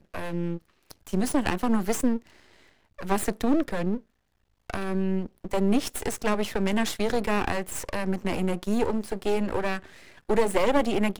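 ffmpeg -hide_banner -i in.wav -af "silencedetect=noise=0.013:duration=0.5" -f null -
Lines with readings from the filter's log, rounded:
silence_start: 2.27
silence_end: 2.99 | silence_duration: 0.72
silence_start: 3.99
silence_end: 4.70 | silence_duration: 0.70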